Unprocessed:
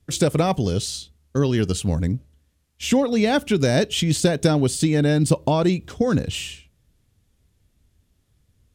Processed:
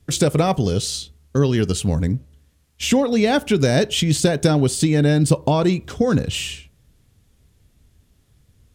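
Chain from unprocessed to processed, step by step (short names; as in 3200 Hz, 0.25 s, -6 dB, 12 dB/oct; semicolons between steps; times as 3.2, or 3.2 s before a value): in parallel at +1 dB: compressor, threshold -31 dBFS, peak gain reduction 18 dB; on the sum: reverb RT60 0.45 s, pre-delay 3 ms, DRR 17 dB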